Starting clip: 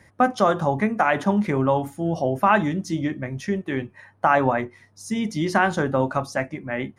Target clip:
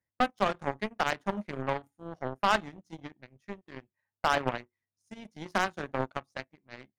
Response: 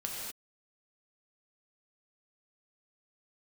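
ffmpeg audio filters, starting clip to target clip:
-af "aeval=exprs='0.596*(cos(1*acos(clip(val(0)/0.596,-1,1)))-cos(1*PI/2))+0.133*(cos(3*acos(clip(val(0)/0.596,-1,1)))-cos(3*PI/2))+0.0266*(cos(7*acos(clip(val(0)/0.596,-1,1)))-cos(7*PI/2))':c=same,asoftclip=type=hard:threshold=-11dB,volume=-2.5dB"

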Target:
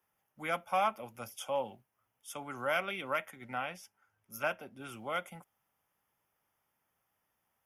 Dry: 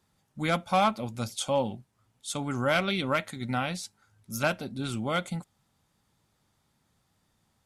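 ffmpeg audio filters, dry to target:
-filter_complex "[0:a]asuperstop=centerf=4100:order=4:qfactor=2,acrossover=split=420 6200:gain=0.2 1 0.112[a][b][c];[a][b][c]amix=inputs=3:normalize=0,acrossover=split=120[d][e];[d]acrusher=bits=3:mode=log:mix=0:aa=0.000001[f];[e]aexciter=amount=14.7:drive=8.1:freq=11k[g];[f][g]amix=inputs=2:normalize=0,asettb=1/sr,asplit=3[h][i][j];[h]atrim=end=3.314[k];[i]atrim=start=3.31:end=4.81,asetpts=PTS-STARTPTS,afade=t=in:d=0.004:c=qsin,afade=t=out:st=1.496:d=0.004:c=qsin,highshelf=f=9.8k:g=-9.5[l];[j]atrim=start=4.806[m];[k][l]acrossfade=d=0.004:c1=hsin:c2=qsin[n];[n][m]acrossfade=d=0.004:c1=qsin:c2=hsin,volume=-5dB"

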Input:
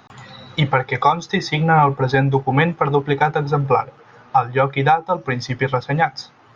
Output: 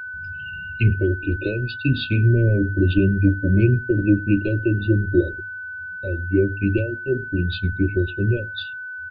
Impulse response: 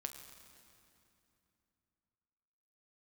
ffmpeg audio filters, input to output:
-filter_complex "[0:a]acrossover=split=260|840[a][b][c];[b]aeval=exprs='val(0)*gte(abs(val(0)),0.015)':c=same[d];[a][d][c]amix=inputs=3:normalize=0,dynaudnorm=f=240:g=13:m=11.5dB,asoftclip=type=tanh:threshold=-3dB,asuperstop=centerf=1500:order=12:qfactor=0.53,aecho=1:1:78:0.0631,asetrate=31752,aresample=44100,afftdn=nr=26:nf=-41,bandreject=f=50:t=h:w=6,bandreject=f=100:t=h:w=6,bandreject=f=150:t=h:w=6,atempo=1,lowshelf=f=66:g=9.5,aeval=exprs='val(0)+0.0316*sin(2*PI*1500*n/s)':c=same,adynamicequalizer=threshold=0.00562:dfrequency=3800:dqfactor=0.7:tfrequency=3800:tqfactor=0.7:attack=5:release=100:ratio=0.375:range=1.5:mode=cutabove:tftype=highshelf"

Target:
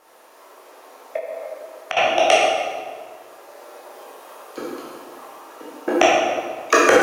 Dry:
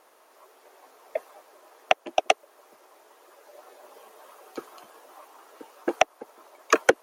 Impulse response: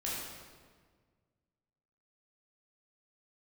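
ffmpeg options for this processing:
-filter_complex "[1:a]atrim=start_sample=2205[a];[0:a][a]afir=irnorm=-1:irlink=0,asettb=1/sr,asplit=3[b][c][d];[b]atrim=end=1.164[e];[c]atrim=start=1.16:end=1.97,asetpts=PTS-STARTPTS,afade=t=in:d=0.004:c=qsin,afade=t=out:st=0.806:d=0.004:c=qsin,acompressor=threshold=-32dB:ratio=6[f];[d]atrim=start=1.966[g];[e][f]acrossfade=d=0.004:c1=hsin:c2=qsin[h];[h][g]acrossfade=d=0.004:c1=qsin:c2=hsin,alimiter=level_in=7dB:limit=-1dB:release=50:level=0:latency=1,volume=-1dB"

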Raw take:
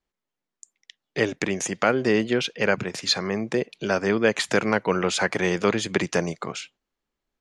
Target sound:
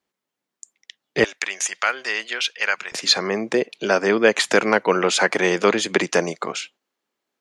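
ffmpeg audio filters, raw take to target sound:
-af "asetnsamples=n=441:p=0,asendcmd='1.24 highpass f 1300;2.92 highpass f 270',highpass=150,volume=5.5dB"

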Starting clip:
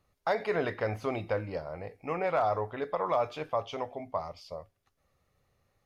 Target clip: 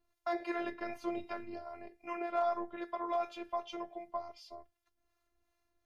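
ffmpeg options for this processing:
-filter_complex "[0:a]afftfilt=real='hypot(re,im)*cos(PI*b)':imag='0':win_size=512:overlap=0.75,acrossover=split=620[a][b];[a]aeval=exprs='val(0)*(1-0.5/2+0.5/2*cos(2*PI*2.6*n/s))':c=same[c];[b]aeval=exprs='val(0)*(1-0.5/2-0.5/2*cos(2*PI*2.6*n/s))':c=same[d];[c][d]amix=inputs=2:normalize=0"

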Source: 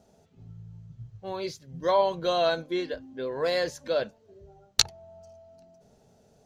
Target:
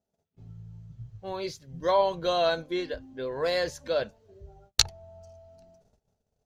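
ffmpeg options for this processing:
-af "agate=range=-24dB:threshold=-57dB:ratio=16:detection=peak,asubboost=boost=3.5:cutoff=100"

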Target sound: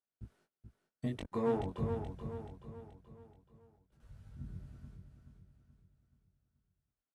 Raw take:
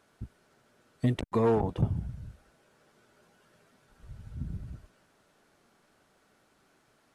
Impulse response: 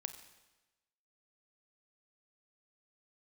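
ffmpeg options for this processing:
-af "agate=range=-27dB:threshold=-60dB:ratio=16:detection=peak,flanger=delay=19:depth=2.7:speed=0.32,aecho=1:1:429|858|1287|1716|2145:0.447|0.205|0.0945|0.0435|0.02,volume=-6dB"

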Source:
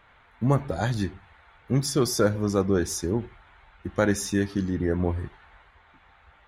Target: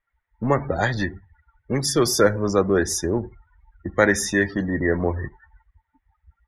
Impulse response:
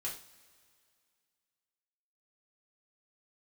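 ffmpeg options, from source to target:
-filter_complex "[0:a]afftdn=nr=36:nf=-43,equalizer=f=1.9k:t=o:w=0.22:g=13.5,acrossover=split=290[a][b];[a]asoftclip=type=tanh:threshold=-31dB[c];[c][b]amix=inputs=2:normalize=0,volume=6dB"

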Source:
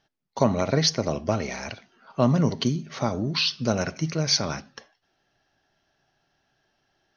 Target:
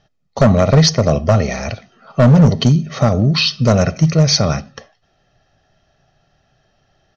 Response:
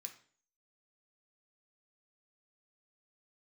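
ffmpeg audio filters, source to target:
-af "lowshelf=f=450:g=9,aecho=1:1:1.6:0.52,aresample=16000,asoftclip=type=hard:threshold=-11.5dB,aresample=44100,volume=6.5dB"

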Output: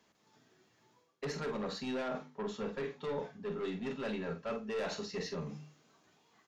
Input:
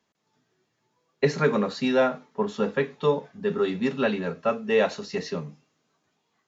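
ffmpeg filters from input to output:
-filter_complex "[0:a]aeval=exprs='(tanh(14.1*val(0)+0.1)-tanh(0.1))/14.1':c=same,areverse,acompressor=threshold=-42dB:ratio=6,areverse,bandreject=f=50:t=h:w=6,bandreject=f=100:t=h:w=6,bandreject=f=150:t=h:w=6,bandreject=f=200:t=h:w=6,bandreject=f=250:t=h:w=6,asplit=2[a][b];[b]adelay=47,volume=-9dB[c];[a][c]amix=inputs=2:normalize=0,volume=4.5dB"

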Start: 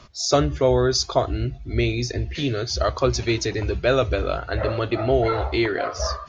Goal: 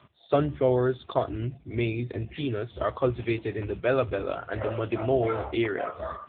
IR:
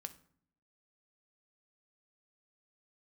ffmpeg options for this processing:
-filter_complex "[0:a]asettb=1/sr,asplit=3[a][b][c];[a]atrim=end=2.454[d];[b]atrim=start=2.45:end=4.56,asetpts=PTS-STARTPTS,afade=t=in:d=0.004:c=qsin,afade=t=out:st=2.106:d=0.004:c=qsin,adynamicequalizer=threshold=0.00501:dfrequency=150:dqfactor=6.9:tfrequency=150:tqfactor=6.9:attack=5:release=100:ratio=0.375:range=3:mode=cutabove:tftype=bell[e];[c]atrim=start=4.556[f];[d][e]acrossfade=d=0.004:c1=hsin:c2=qsin[g];[g][f]acrossfade=d=0.004:c1=qsin:c2=hsin,volume=-4dB" -ar 8000 -c:a libopencore_amrnb -b:a 6700

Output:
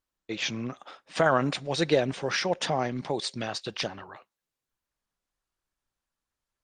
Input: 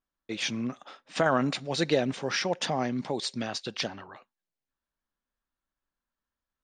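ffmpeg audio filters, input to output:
-af "equalizer=f=240:w=3.6:g=-6.5,volume=2.5dB" -ar 48000 -c:a libopus -b:a 24k

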